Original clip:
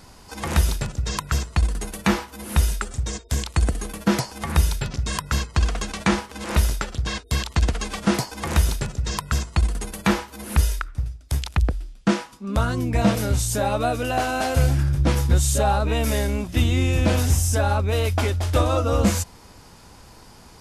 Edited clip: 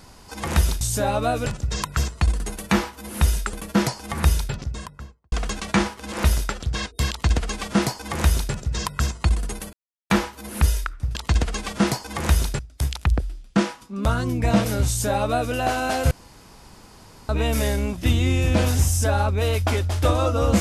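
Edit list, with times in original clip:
0:02.88–0:03.85: remove
0:04.60–0:05.64: fade out and dull
0:07.42–0:08.86: duplicate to 0:11.10
0:10.05: splice in silence 0.37 s
0:13.39–0:14.04: duplicate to 0:00.81
0:14.62–0:15.80: fill with room tone

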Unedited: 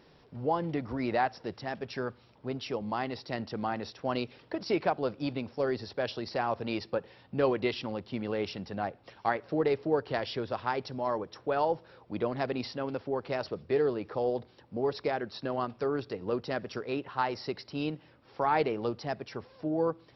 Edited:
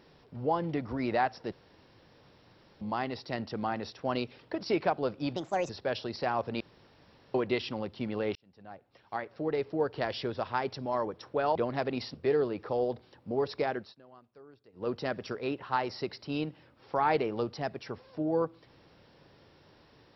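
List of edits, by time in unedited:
0:01.52–0:02.81: fill with room tone
0:05.36–0:05.82: play speed 138%
0:06.73–0:07.47: fill with room tone
0:08.48–0:10.27: fade in
0:11.68–0:12.18: remove
0:12.77–0:13.60: remove
0:15.22–0:16.37: duck −23 dB, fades 0.19 s

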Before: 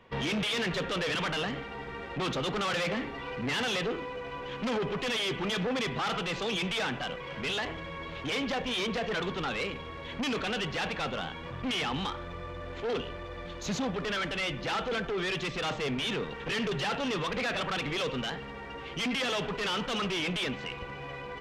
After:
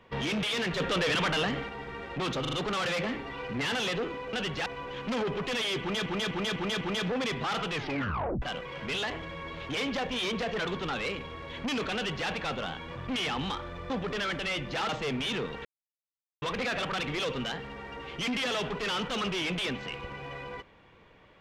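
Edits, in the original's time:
0:00.80–0:01.69: clip gain +3.5 dB
0:02.41: stutter 0.04 s, 4 plays
0:05.36–0:05.61: repeat, 5 plays
0:06.25: tape stop 0.72 s
0:10.50–0:10.83: duplicate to 0:04.21
0:12.45–0:13.82: remove
0:14.81–0:15.67: remove
0:16.43–0:17.20: silence

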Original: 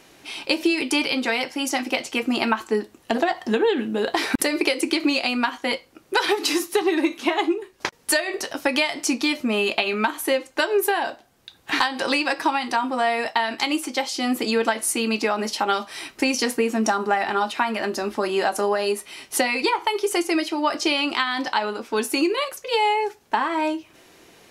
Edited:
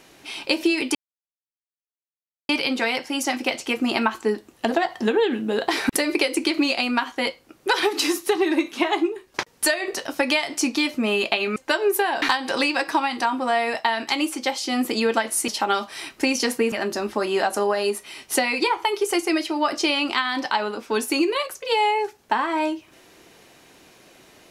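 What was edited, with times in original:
0:00.95: splice in silence 1.54 s
0:10.02–0:10.45: remove
0:11.11–0:11.73: remove
0:14.99–0:15.47: remove
0:16.71–0:17.74: remove

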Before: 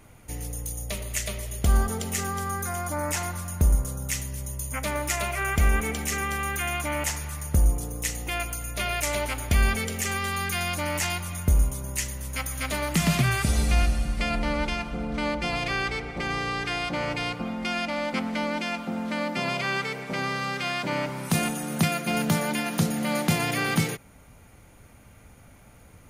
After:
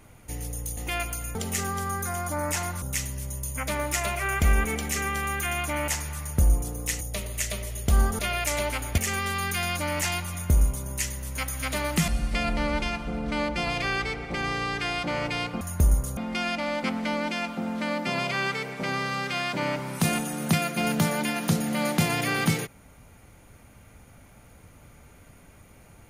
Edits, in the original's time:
0:00.77–0:01.95: swap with 0:08.17–0:08.75
0:03.42–0:03.98: move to 0:17.47
0:09.54–0:09.96: remove
0:13.06–0:13.94: remove

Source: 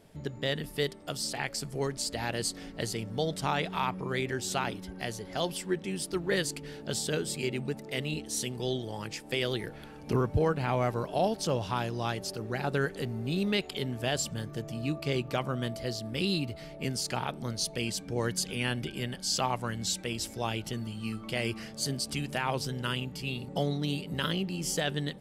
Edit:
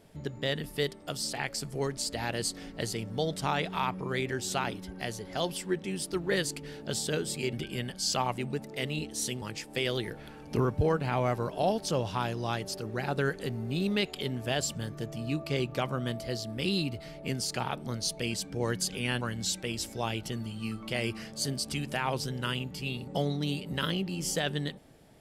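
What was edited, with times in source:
0:08.57–0:08.98: remove
0:18.77–0:19.62: move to 0:07.53

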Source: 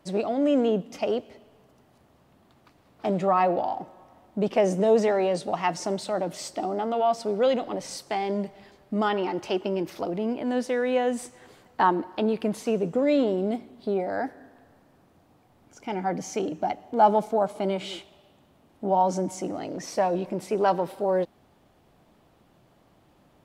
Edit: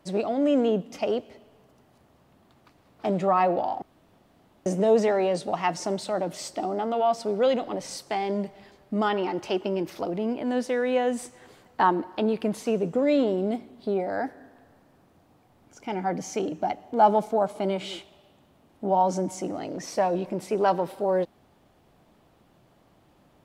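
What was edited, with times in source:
0:03.82–0:04.66: fill with room tone

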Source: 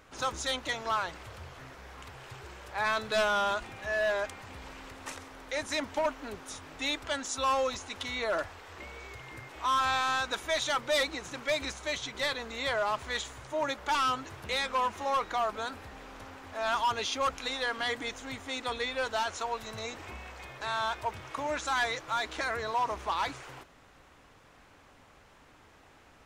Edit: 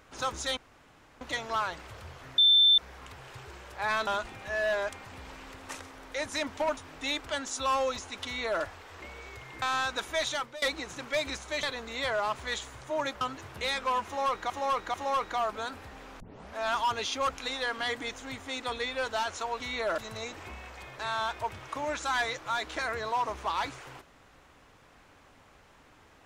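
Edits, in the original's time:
0:00.57: splice in room tone 0.64 s
0:01.74: insert tone 3,550 Hz −17 dBFS 0.40 s
0:03.03–0:03.44: remove
0:06.14–0:06.55: remove
0:08.03–0:08.41: duplicate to 0:19.60
0:09.40–0:09.97: remove
0:10.62–0:10.97: fade out, to −22 dB
0:11.98–0:12.26: remove
0:13.84–0:14.09: remove
0:14.94–0:15.38: repeat, 3 plays
0:16.20: tape start 0.36 s

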